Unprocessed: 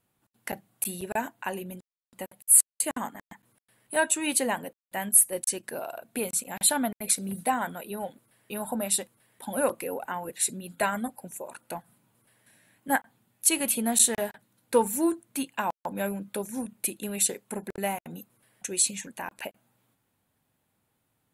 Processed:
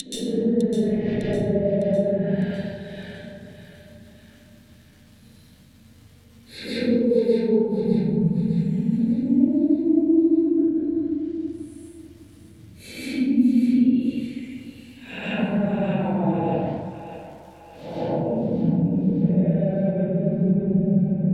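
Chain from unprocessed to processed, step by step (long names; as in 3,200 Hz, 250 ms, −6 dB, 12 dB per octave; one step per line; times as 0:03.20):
octave-band graphic EQ 125/250/500/1,000/2,000/4,000/8,000 Hz +9/+7/+9/−6/+4/+10/−5 dB
extreme stretch with random phases 10×, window 0.05 s, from 0:14.06
parametric band 1,100 Hz −12 dB 1.2 octaves
downward compressor 10 to 1, threshold −26 dBFS, peak gain reduction 19.5 dB
mains hum 50 Hz, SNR 34 dB
frequency shifter −17 Hz
surface crackle 240 per second −49 dBFS
treble cut that deepens with the level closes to 730 Hz, closed at −26 dBFS
feedback echo with a high-pass in the loop 605 ms, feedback 54%, high-pass 530 Hz, level −10 dB
convolution reverb RT60 0.90 s, pre-delay 122 ms, DRR −6.5 dB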